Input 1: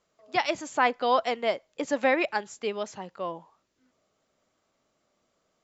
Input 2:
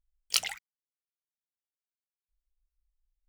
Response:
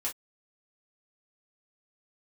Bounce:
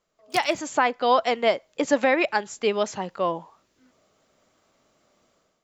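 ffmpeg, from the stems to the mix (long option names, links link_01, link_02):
-filter_complex "[0:a]volume=-2.5dB[link_01];[1:a]volume=-15dB[link_02];[link_01][link_02]amix=inputs=2:normalize=0,dynaudnorm=framelen=150:gausssize=5:maxgain=11dB,alimiter=limit=-8.5dB:level=0:latency=1:release=434"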